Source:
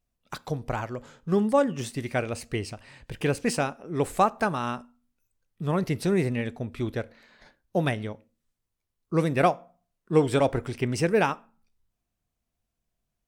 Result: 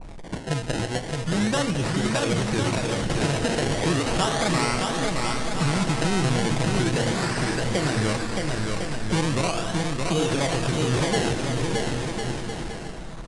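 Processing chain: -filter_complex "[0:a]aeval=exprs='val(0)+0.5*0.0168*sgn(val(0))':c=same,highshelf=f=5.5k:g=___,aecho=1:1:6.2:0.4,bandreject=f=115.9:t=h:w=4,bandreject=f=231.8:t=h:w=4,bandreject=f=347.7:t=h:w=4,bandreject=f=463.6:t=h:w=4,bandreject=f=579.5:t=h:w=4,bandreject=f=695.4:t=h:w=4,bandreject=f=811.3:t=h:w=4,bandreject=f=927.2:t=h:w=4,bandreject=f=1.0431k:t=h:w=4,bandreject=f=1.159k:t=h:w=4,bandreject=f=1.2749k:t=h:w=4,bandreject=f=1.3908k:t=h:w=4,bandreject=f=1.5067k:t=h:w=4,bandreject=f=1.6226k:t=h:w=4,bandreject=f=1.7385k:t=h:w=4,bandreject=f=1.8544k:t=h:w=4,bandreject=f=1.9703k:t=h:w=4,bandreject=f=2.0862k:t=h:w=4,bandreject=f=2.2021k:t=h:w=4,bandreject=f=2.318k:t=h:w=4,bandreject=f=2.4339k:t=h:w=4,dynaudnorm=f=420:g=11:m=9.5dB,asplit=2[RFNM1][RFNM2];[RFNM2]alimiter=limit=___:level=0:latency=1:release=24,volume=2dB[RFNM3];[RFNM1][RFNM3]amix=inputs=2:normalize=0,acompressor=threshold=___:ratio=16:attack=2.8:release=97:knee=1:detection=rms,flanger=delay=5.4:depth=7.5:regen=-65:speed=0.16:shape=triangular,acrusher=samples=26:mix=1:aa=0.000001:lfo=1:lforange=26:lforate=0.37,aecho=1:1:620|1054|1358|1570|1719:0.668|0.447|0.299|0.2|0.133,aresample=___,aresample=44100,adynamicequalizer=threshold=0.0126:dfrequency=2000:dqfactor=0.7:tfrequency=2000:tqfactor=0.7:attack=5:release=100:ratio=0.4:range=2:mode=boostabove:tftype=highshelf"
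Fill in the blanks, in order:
-5.5, -10dB, -16dB, 22050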